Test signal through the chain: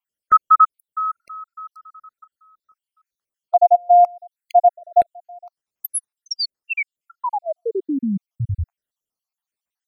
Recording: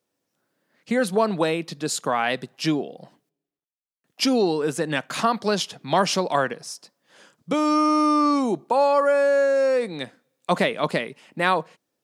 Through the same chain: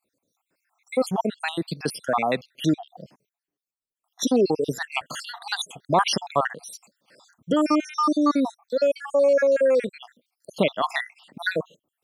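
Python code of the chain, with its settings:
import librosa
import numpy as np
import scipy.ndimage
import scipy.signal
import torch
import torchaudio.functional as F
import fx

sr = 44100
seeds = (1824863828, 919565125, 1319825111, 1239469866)

p1 = fx.spec_dropout(x, sr, seeds[0], share_pct=68)
p2 = fx.level_steps(p1, sr, step_db=17)
y = p1 + (p2 * 10.0 ** (1.5 / 20.0))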